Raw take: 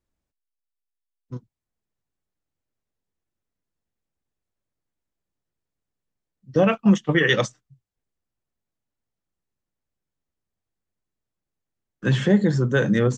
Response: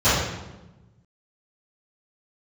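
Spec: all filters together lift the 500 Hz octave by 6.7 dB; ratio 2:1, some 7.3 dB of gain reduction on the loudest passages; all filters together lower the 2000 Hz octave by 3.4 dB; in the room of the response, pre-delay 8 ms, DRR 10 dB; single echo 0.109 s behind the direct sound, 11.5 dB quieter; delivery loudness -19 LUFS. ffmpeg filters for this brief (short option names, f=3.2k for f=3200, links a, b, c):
-filter_complex "[0:a]equalizer=f=500:t=o:g=8,equalizer=f=2k:t=o:g=-4.5,acompressor=threshold=-22dB:ratio=2,aecho=1:1:109:0.266,asplit=2[a][b];[1:a]atrim=start_sample=2205,adelay=8[c];[b][c]afir=irnorm=-1:irlink=0,volume=-32dB[d];[a][d]amix=inputs=2:normalize=0,volume=3.5dB"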